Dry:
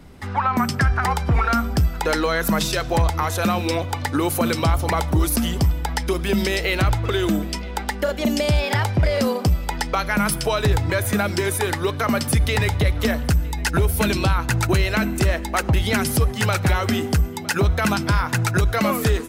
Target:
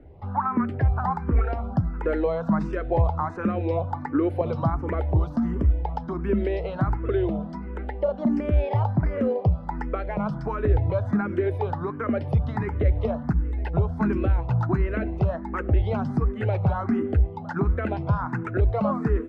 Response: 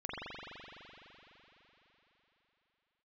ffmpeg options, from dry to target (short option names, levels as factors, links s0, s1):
-filter_complex "[0:a]lowpass=1000,asplit=2[s0][s1];[s1]afreqshift=1.4[s2];[s0][s2]amix=inputs=2:normalize=1"